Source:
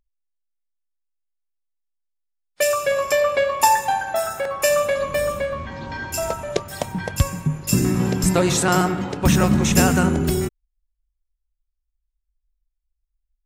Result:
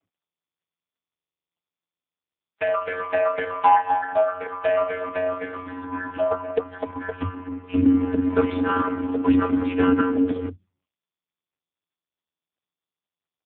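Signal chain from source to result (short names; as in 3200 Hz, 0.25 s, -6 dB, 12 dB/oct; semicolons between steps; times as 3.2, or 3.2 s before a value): 5.25–5.83 switching spikes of -24 dBFS; vocoder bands 32, square 91 Hz; AMR-NB 5.15 kbps 8000 Hz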